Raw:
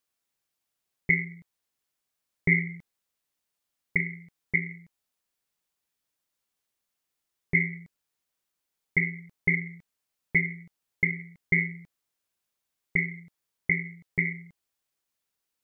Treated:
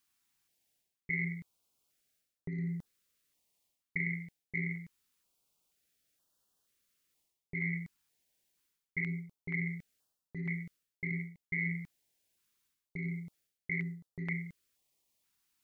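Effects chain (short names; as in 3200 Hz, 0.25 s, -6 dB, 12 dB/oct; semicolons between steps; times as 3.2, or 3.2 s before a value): reverse; compressor 16:1, threshold -36 dBFS, peak gain reduction 20 dB; reverse; stepped notch 2.1 Hz 550–2200 Hz; gain +5 dB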